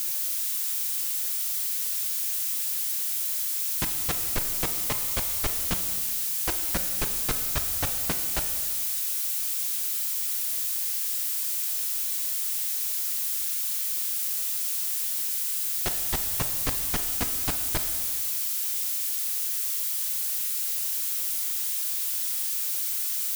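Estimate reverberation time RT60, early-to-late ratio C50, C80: 1.9 s, 7.5 dB, 8.5 dB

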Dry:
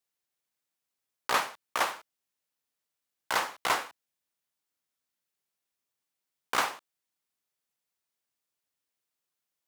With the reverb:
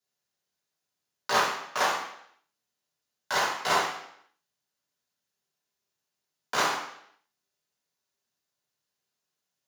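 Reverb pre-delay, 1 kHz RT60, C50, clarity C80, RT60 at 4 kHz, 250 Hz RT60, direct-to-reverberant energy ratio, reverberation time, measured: 3 ms, 0.70 s, 3.5 dB, 7.5 dB, 0.70 s, 0.70 s, -6.5 dB, 0.70 s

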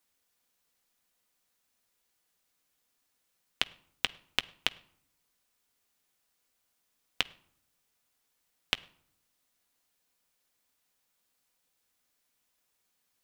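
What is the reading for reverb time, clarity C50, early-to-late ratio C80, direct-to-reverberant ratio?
0.65 s, 21.5 dB, 24.0 dB, 10.5 dB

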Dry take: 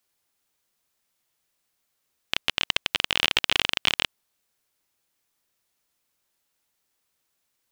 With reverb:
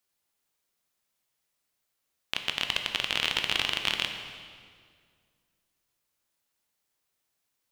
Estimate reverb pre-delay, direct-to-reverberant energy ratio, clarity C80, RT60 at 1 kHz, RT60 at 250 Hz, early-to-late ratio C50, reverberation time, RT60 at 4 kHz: 13 ms, 4.5 dB, 7.5 dB, 1.9 s, 2.3 s, 6.5 dB, 2.0 s, 1.7 s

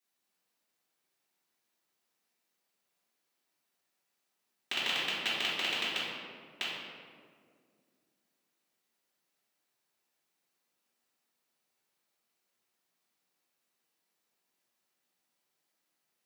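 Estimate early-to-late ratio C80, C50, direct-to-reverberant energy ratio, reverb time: 1.0 dB, -1.5 dB, -11.0 dB, 2.0 s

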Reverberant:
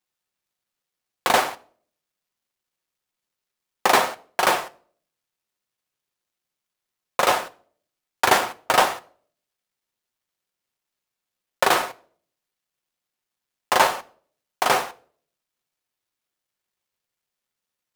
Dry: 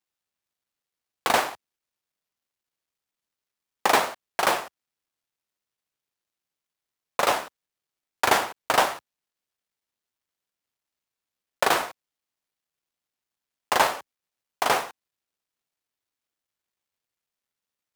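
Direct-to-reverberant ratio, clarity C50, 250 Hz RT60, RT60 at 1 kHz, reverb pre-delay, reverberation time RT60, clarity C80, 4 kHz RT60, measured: 9.0 dB, 21.0 dB, 0.60 s, 0.45 s, 6 ms, 0.50 s, 24.0 dB, 0.40 s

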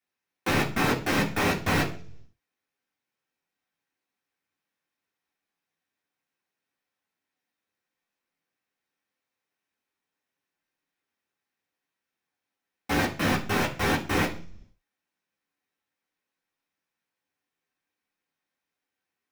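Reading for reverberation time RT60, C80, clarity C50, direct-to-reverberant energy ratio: 0.45 s, 16.5 dB, 11.5 dB, -4.0 dB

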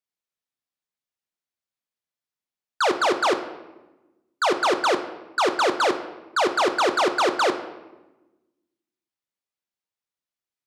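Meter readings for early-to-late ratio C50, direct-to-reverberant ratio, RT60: 11.0 dB, 7.5 dB, 1.1 s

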